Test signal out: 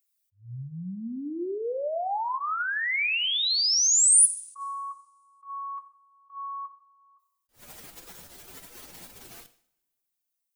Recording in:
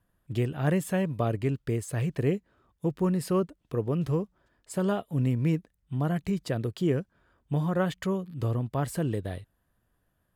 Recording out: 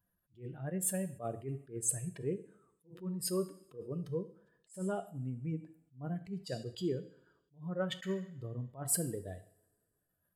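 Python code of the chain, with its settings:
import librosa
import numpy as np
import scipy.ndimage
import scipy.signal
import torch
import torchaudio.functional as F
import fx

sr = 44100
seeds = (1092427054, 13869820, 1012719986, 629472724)

y = fx.spec_expand(x, sr, power=1.8)
y = fx.dynamic_eq(y, sr, hz=2300.0, q=1.9, threshold_db=-51.0, ratio=4.0, max_db=6)
y = fx.rev_double_slope(y, sr, seeds[0], early_s=0.57, late_s=2.1, knee_db=-26, drr_db=10.0)
y = fx.rider(y, sr, range_db=5, speed_s=0.5)
y = fx.riaa(y, sr, side='recording')
y = fx.notch(y, sr, hz=1100.0, q=24.0)
y = fx.attack_slew(y, sr, db_per_s=220.0)
y = y * 10.0 ** (-2.5 / 20.0)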